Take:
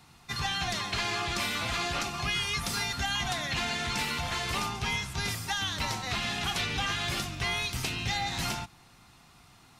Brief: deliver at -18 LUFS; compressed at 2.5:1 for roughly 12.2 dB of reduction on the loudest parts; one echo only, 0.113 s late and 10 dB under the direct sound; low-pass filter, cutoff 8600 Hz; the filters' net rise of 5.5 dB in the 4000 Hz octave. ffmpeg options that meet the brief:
-af "lowpass=8.6k,equalizer=f=4k:t=o:g=7,acompressor=threshold=-43dB:ratio=2.5,aecho=1:1:113:0.316,volume=20dB"

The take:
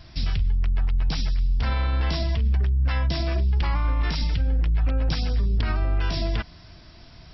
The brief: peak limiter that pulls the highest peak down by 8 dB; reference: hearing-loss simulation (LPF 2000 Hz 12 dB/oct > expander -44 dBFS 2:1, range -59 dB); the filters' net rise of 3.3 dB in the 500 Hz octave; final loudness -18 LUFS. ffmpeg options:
-af "equalizer=f=500:t=o:g=4.5,alimiter=limit=-20.5dB:level=0:latency=1,lowpass=2k,agate=range=-59dB:threshold=-44dB:ratio=2,volume=11dB"

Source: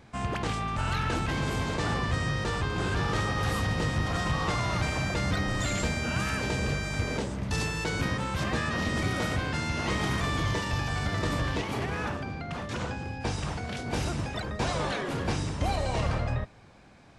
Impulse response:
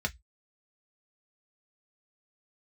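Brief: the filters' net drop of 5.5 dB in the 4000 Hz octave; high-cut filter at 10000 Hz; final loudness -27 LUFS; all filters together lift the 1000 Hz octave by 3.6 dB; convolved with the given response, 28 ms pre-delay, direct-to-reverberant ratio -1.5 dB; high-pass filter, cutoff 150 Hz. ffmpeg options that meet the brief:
-filter_complex "[0:a]highpass=150,lowpass=10k,equalizer=f=1k:t=o:g=5,equalizer=f=4k:t=o:g=-7.5,asplit=2[a][b];[1:a]atrim=start_sample=2205,adelay=28[c];[b][c]afir=irnorm=-1:irlink=0,volume=-4dB[d];[a][d]amix=inputs=2:normalize=0,volume=-0.5dB"

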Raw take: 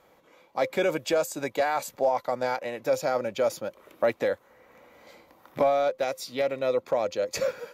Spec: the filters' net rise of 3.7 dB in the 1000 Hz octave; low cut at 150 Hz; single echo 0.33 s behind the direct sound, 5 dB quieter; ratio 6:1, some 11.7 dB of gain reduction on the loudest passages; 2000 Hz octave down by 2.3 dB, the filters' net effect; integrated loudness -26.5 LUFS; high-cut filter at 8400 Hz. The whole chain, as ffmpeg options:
-af "highpass=150,lowpass=8.4k,equalizer=f=1k:t=o:g=6.5,equalizer=f=2k:t=o:g=-5.5,acompressor=threshold=-30dB:ratio=6,aecho=1:1:330:0.562,volume=7.5dB"

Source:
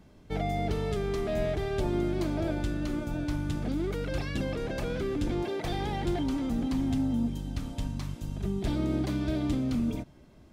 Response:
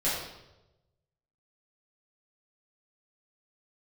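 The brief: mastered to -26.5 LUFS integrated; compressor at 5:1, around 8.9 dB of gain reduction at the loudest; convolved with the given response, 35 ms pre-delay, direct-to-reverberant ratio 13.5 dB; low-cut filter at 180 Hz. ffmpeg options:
-filter_complex "[0:a]highpass=180,acompressor=threshold=-37dB:ratio=5,asplit=2[a][b];[1:a]atrim=start_sample=2205,adelay=35[c];[b][c]afir=irnorm=-1:irlink=0,volume=-23.5dB[d];[a][d]amix=inputs=2:normalize=0,volume=13.5dB"

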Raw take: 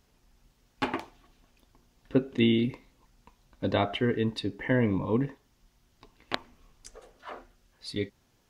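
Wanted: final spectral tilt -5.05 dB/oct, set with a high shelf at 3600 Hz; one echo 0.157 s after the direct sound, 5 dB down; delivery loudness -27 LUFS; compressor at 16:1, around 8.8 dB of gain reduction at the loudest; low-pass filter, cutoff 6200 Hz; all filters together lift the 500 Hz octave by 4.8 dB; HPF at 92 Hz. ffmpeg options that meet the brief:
-af "highpass=92,lowpass=6.2k,equalizer=f=500:t=o:g=6,highshelf=f=3.6k:g=-4.5,acompressor=threshold=-26dB:ratio=16,aecho=1:1:157:0.562,volume=6.5dB"

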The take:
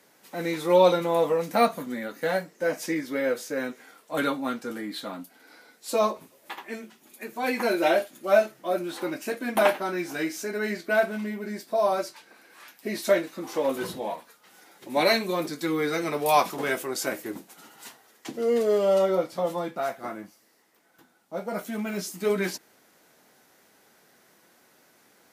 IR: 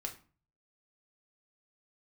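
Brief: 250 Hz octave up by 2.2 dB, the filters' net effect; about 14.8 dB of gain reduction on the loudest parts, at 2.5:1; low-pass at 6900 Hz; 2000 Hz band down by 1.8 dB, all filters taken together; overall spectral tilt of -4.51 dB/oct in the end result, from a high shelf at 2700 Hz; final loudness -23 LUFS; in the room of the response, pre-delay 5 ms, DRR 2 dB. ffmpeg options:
-filter_complex "[0:a]lowpass=6.9k,equalizer=f=250:t=o:g=3,equalizer=f=2k:t=o:g=-4,highshelf=f=2.7k:g=4,acompressor=threshold=-37dB:ratio=2.5,asplit=2[a][b];[1:a]atrim=start_sample=2205,adelay=5[c];[b][c]afir=irnorm=-1:irlink=0,volume=-1dB[d];[a][d]amix=inputs=2:normalize=0,volume=11.5dB"

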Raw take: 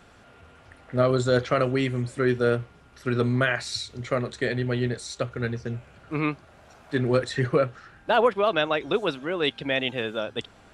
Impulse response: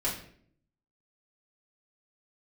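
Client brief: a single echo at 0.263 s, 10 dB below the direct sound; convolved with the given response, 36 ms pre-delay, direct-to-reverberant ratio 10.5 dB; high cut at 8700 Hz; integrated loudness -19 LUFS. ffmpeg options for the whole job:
-filter_complex "[0:a]lowpass=8.7k,aecho=1:1:263:0.316,asplit=2[a][b];[1:a]atrim=start_sample=2205,adelay=36[c];[b][c]afir=irnorm=-1:irlink=0,volume=-17.5dB[d];[a][d]amix=inputs=2:normalize=0,volume=6.5dB"

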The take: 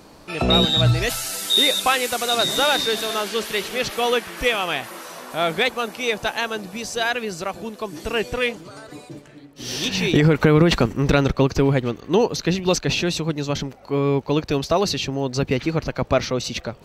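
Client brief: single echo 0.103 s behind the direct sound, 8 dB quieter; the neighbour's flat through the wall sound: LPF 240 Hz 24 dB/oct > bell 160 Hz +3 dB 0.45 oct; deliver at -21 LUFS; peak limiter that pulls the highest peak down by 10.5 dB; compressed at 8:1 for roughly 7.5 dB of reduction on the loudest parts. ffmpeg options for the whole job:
-af "acompressor=threshold=-19dB:ratio=8,alimiter=limit=-19.5dB:level=0:latency=1,lowpass=f=240:w=0.5412,lowpass=f=240:w=1.3066,equalizer=f=160:t=o:w=0.45:g=3,aecho=1:1:103:0.398,volume=13dB"

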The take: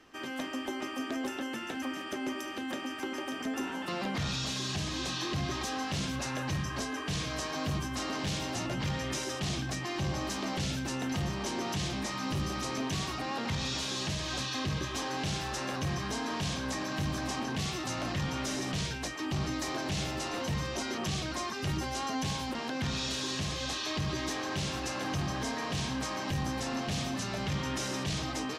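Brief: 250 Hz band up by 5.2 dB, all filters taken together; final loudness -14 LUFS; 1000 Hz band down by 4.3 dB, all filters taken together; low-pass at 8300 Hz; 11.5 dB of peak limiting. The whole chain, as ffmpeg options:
-af "lowpass=8.3k,equalizer=f=250:t=o:g=6.5,equalizer=f=1k:t=o:g=-6,volume=25.5dB,alimiter=limit=-6.5dB:level=0:latency=1"

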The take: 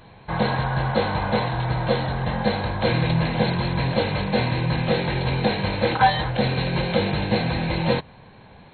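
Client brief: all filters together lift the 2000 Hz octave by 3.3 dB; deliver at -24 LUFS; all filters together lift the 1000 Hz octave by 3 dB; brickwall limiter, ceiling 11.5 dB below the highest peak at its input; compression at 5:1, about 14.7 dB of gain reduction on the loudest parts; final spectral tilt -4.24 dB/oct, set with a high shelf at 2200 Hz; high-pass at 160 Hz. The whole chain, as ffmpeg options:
-af "highpass=160,equalizer=f=1k:t=o:g=4,equalizer=f=2k:t=o:g=6.5,highshelf=f=2.2k:g=-7,acompressor=threshold=-26dB:ratio=5,volume=10dB,alimiter=limit=-15.5dB:level=0:latency=1"

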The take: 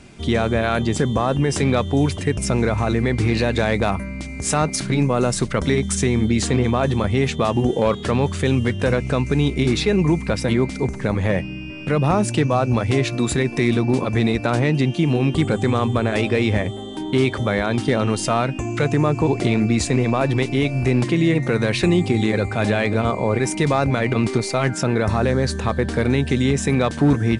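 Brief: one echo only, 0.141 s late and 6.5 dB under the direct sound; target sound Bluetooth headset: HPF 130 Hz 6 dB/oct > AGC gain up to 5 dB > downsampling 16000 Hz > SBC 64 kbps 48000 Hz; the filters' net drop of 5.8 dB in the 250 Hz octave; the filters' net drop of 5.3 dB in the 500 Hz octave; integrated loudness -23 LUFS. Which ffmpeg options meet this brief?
-af "highpass=f=130:p=1,equalizer=f=250:t=o:g=-4.5,equalizer=f=500:t=o:g=-5,aecho=1:1:141:0.473,dynaudnorm=m=5dB,aresample=16000,aresample=44100,volume=-2dB" -ar 48000 -c:a sbc -b:a 64k

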